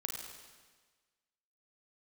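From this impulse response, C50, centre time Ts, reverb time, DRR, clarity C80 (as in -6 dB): 2.0 dB, 63 ms, 1.4 s, 0.5 dB, 3.5 dB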